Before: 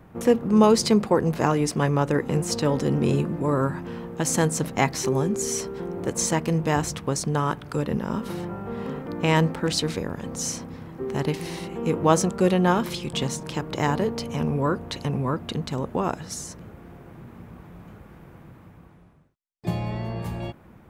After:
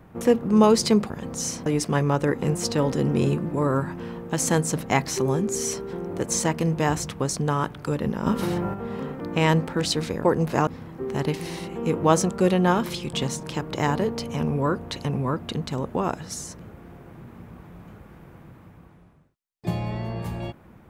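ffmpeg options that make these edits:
-filter_complex "[0:a]asplit=7[s0][s1][s2][s3][s4][s5][s6];[s0]atrim=end=1.102[s7];[s1]atrim=start=10.108:end=10.672[s8];[s2]atrim=start=1.528:end=8.132[s9];[s3]atrim=start=8.128:end=8.612,asetpts=PTS-STARTPTS,volume=2[s10];[s4]atrim=start=8.608:end=10.112[s11];[s5]atrim=start=1.098:end=1.532[s12];[s6]atrim=start=10.668[s13];[s7][s8]acrossfade=d=0.004:c1=hsin:c2=hsin[s14];[s14][s9]acrossfade=d=0.004:c1=hsin:c2=hsin[s15];[s15][s10]acrossfade=d=0.004:c1=hsin:c2=hsin[s16];[s16][s11]acrossfade=d=0.004:c1=hsin:c2=hsin[s17];[s17][s12]acrossfade=d=0.004:c1=hsin:c2=hsin[s18];[s18][s13]acrossfade=d=0.004:c1=hsin:c2=hsin"

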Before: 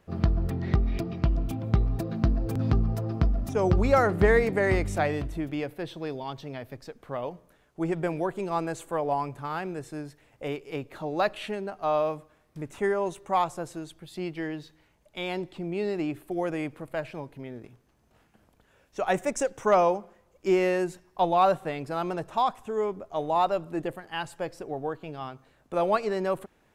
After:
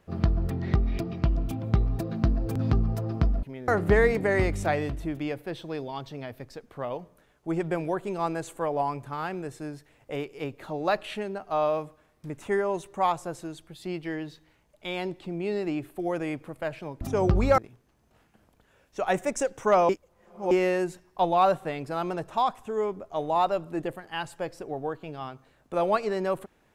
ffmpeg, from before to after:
-filter_complex "[0:a]asplit=7[s0][s1][s2][s3][s4][s5][s6];[s0]atrim=end=3.432[s7];[s1]atrim=start=17.328:end=17.582[s8];[s2]atrim=start=3.998:end=17.332[s9];[s3]atrim=start=3.428:end=4.002[s10];[s4]atrim=start=17.578:end=19.892[s11];[s5]atrim=start=19.888:end=20.512,asetpts=PTS-STARTPTS,areverse[s12];[s6]atrim=start=20.508[s13];[s7][s8]acrossfade=d=0.004:c1=hsin:c2=hsin[s14];[s14][s9]acrossfade=d=0.004:c1=hsin:c2=hsin[s15];[s15][s10]acrossfade=d=0.004:c1=hsin:c2=hsin[s16];[s16][s11]acrossfade=d=0.004:c1=hsin:c2=hsin[s17];[s17][s12]acrossfade=d=0.004:c1=hsin:c2=hsin[s18];[s18][s13]acrossfade=d=0.004:c1=hsin:c2=hsin"

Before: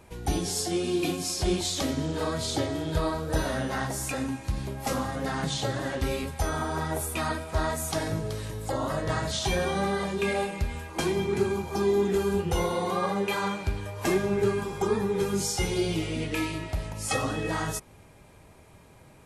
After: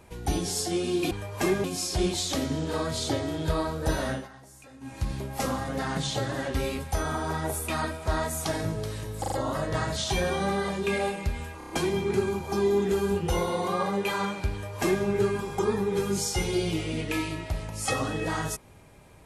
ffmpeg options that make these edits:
-filter_complex "[0:a]asplit=12[s0][s1][s2][s3][s4][s5][s6][s7][s8][s9][s10][s11];[s0]atrim=end=1.112[s12];[s1]atrim=start=13.748:end=14.282[s13];[s2]atrim=start=1.108:end=3.75,asetpts=PTS-STARTPTS,afade=t=out:st=2.472:d=0.17:silence=0.112202[s14];[s3]atrim=start=3.75:end=4.27,asetpts=PTS-STARTPTS,volume=0.112[s15];[s4]atrim=start=4.27:end=8.712,asetpts=PTS-STARTPTS,afade=t=in:d=0.17:silence=0.112202[s16];[s5]atrim=start=8.668:end=8.712[s17];[s6]atrim=start=8.668:end=8.712[s18];[s7]atrim=start=8.668:end=10.962[s19];[s8]atrim=start=10.928:end=10.962[s20];[s9]atrim=start=10.928:end=10.962[s21];[s10]atrim=start=10.928:end=10.962[s22];[s11]atrim=start=10.928[s23];[s12][s13]acrossfade=d=0.004:c1=hsin:c2=hsin[s24];[s14][s15][s16]concat=n=3:v=0:a=1[s25];[s24][s25]acrossfade=d=0.004:c1=hsin:c2=hsin[s26];[s26][s17]acrossfade=d=0.004:c1=hsin:c2=hsin[s27];[s27][s18]acrossfade=d=0.004:c1=hsin:c2=hsin[s28];[s28][s19]acrossfade=d=0.004:c1=hsin:c2=hsin[s29];[s29][s20]acrossfade=d=0.004:c1=hsin:c2=hsin[s30];[s30][s21]acrossfade=d=0.004:c1=hsin:c2=hsin[s31];[s31][s22]acrossfade=d=0.004:c1=hsin:c2=hsin[s32];[s32][s23]acrossfade=d=0.004:c1=hsin:c2=hsin"

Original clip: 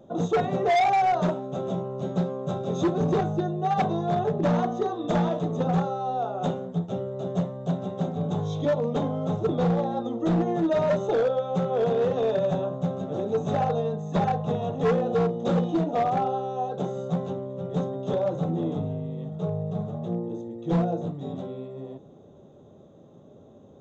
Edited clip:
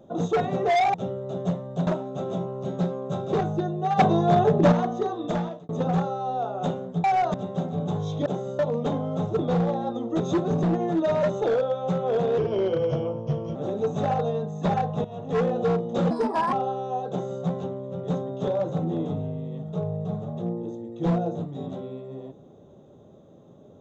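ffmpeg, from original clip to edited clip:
-filter_complex "[0:a]asplit=18[s0][s1][s2][s3][s4][s5][s6][s7][s8][s9][s10][s11][s12][s13][s14][s15][s16][s17];[s0]atrim=end=0.942[s18];[s1]atrim=start=6.838:end=7.772[s19];[s2]atrim=start=1.238:end=2.702[s20];[s3]atrim=start=3.128:end=3.792[s21];[s4]atrim=start=3.788:end=4.522,asetpts=PTS-STARTPTS,volume=2[s22];[s5]atrim=start=4.518:end=5.49,asetpts=PTS-STARTPTS,afade=t=out:st=0.502:d=0.47[s23];[s6]atrim=start=5.49:end=6.842,asetpts=PTS-STARTPTS,afade=t=in:d=0.004:c=hsin[s24];[s7]atrim=start=0.938:end=1.242[s25];[s8]atrim=start=7.768:end=8.692[s26];[s9]atrim=start=16.758:end=17.092[s27];[s10]atrim=start=8.688:end=10.302[s28];[s11]atrim=start=2.698:end=3.132[s29];[s12]atrim=start=10.298:end=12.054[s30];[s13]atrim=start=12.05:end=13.06,asetpts=PTS-STARTPTS,asetrate=37926,aresample=44100[s31];[s14]atrim=start=13.056:end=14.55,asetpts=PTS-STARTPTS,afade=t=out:st=1.49:d=0.004:c=hsin:silence=0.211349[s32];[s15]atrim=start=14.55:end=15.614,asetpts=PTS-STARTPTS,afade=t=in:d=0.41:silence=0.211349[s33];[s16]atrim=start=15.61:end=16.19,asetpts=PTS-STARTPTS,asetrate=60417,aresample=44100,atrim=end_sample=18670,asetpts=PTS-STARTPTS[s34];[s17]atrim=start=16.186[s35];[s18][s19]acrossfade=d=0.004:c1=hsin:c2=hsin[s36];[s36][s20]acrossfade=d=0.004:c1=hsin:c2=hsin[s37];[s37][s21]acrossfade=d=0.004:c1=hsin:c2=hsin[s38];[s38][s22]acrossfade=d=0.004:c1=hsin:c2=hsin[s39];[s23][s24]concat=n=2:v=0:a=1[s40];[s39][s40]acrossfade=d=0.004:c1=hsin:c2=hsin[s41];[s41][s25]acrossfade=d=0.004:c1=hsin:c2=hsin[s42];[s42][s26]acrossfade=d=0.004:c1=hsin:c2=hsin[s43];[s43][s27]acrossfade=d=0.004:c1=hsin:c2=hsin[s44];[s44][s28]acrossfade=d=0.004:c1=hsin:c2=hsin[s45];[s45][s29]acrossfade=d=0.004:c1=hsin:c2=hsin[s46];[s46][s30]acrossfade=d=0.004:c1=hsin:c2=hsin[s47];[s47][s31]acrossfade=d=0.004:c1=hsin:c2=hsin[s48];[s32][s33]concat=n=2:v=0:a=1[s49];[s48][s49]acrossfade=d=0.004:c1=hsin:c2=hsin[s50];[s50][s34]acrossfade=d=0.004:c1=hsin:c2=hsin[s51];[s51][s35]acrossfade=d=0.004:c1=hsin:c2=hsin"

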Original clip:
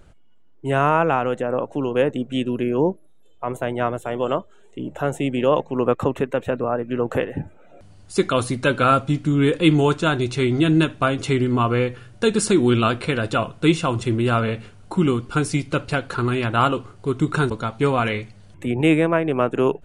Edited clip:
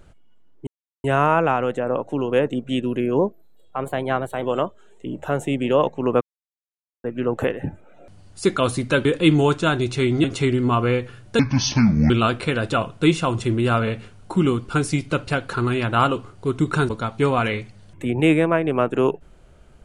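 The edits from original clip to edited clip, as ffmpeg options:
-filter_complex "[0:a]asplit=10[s0][s1][s2][s3][s4][s5][s6][s7][s8][s9];[s0]atrim=end=0.67,asetpts=PTS-STARTPTS,afade=t=out:st=0.666:d=0.004:c=hsin,apad=pad_dur=0.37[s10];[s1]atrim=start=0.67:end=2.824,asetpts=PTS-STARTPTS,afade=t=in:d=0.004:c=hsin[s11];[s2]atrim=start=2.82:end=4.15,asetpts=PTS-STARTPTS,asetrate=47628,aresample=44100,atrim=end_sample=54308,asetpts=PTS-STARTPTS[s12];[s3]atrim=start=4.146:end=5.94,asetpts=PTS-STARTPTS,afade=t=out:st=1.79:d=0.004:c=hsin[s13];[s4]atrim=start=5.94:end=6.77,asetpts=PTS-STARTPTS,volume=0[s14];[s5]atrim=start=6.77:end=8.782,asetpts=PTS-STARTPTS,afade=t=in:d=0.004:c=hsin[s15];[s6]atrim=start=9.448:end=10.642[s16];[s7]atrim=start=11.118:end=12.274[s17];[s8]atrim=start=12.27:end=12.71,asetpts=PTS-STARTPTS,asetrate=27342,aresample=44100[s18];[s9]atrim=start=12.706[s19];[s10][s11]concat=n=2:v=0:a=1[s20];[s20][s12]acrossfade=d=0.004:c1=hsin:c2=hsin[s21];[s13][s14][s15]concat=n=3:v=0:a=1[s22];[s21][s22]acrossfade=d=0.004:c1=hsin:c2=hsin[s23];[s23][s16]acrossfade=d=0.004:c1=hsin:c2=hsin[s24];[s24][s17]acrossfade=d=0.004:c1=hsin:c2=hsin[s25];[s25][s18]acrossfade=d=0.004:c1=hsin:c2=hsin[s26];[s26][s19]acrossfade=d=0.004:c1=hsin:c2=hsin"

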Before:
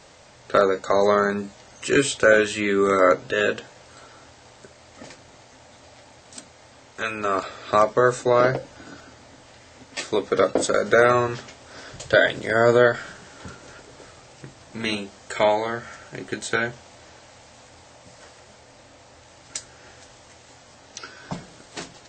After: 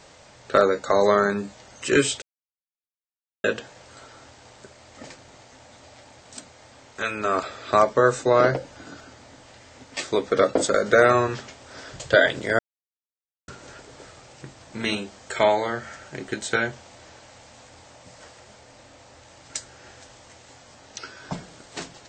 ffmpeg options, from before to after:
-filter_complex "[0:a]asplit=5[s0][s1][s2][s3][s4];[s0]atrim=end=2.22,asetpts=PTS-STARTPTS,afade=t=out:st=2.216:d=0.004:c=hsin[s5];[s1]atrim=start=2.22:end=3.44,asetpts=PTS-STARTPTS,volume=0[s6];[s2]atrim=start=3.44:end=12.59,asetpts=PTS-STARTPTS,afade=t=in:d=0.004:c=hsin,afade=t=out:st=9.146:d=0.004:c=hsin[s7];[s3]atrim=start=12.59:end=13.48,asetpts=PTS-STARTPTS,volume=0[s8];[s4]atrim=start=13.48,asetpts=PTS-STARTPTS,afade=t=in:d=0.004:c=hsin[s9];[s5][s6][s7][s8][s9]concat=n=5:v=0:a=1"

